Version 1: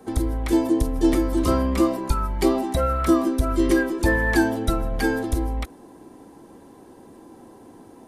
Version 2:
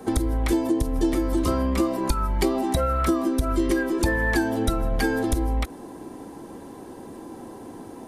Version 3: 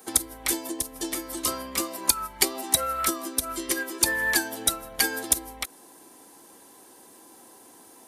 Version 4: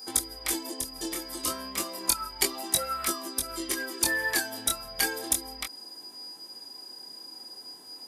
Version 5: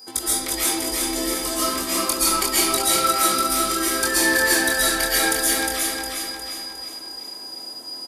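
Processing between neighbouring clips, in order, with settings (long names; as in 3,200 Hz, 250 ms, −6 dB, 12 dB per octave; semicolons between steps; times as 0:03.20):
downward compressor, threshold −26 dBFS, peak gain reduction 12.5 dB; level +6.5 dB
spectral tilt +4.5 dB per octave; expander for the loud parts 1.5 to 1, over −35 dBFS
steady tone 4,900 Hz −39 dBFS; chorus effect 0.32 Hz, delay 20 ms, depth 6 ms
on a send: repeating echo 358 ms, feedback 49%, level −3.5 dB; on the sum: comb and all-pass reverb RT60 0.97 s, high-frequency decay 0.75×, pre-delay 95 ms, DRR −8.5 dB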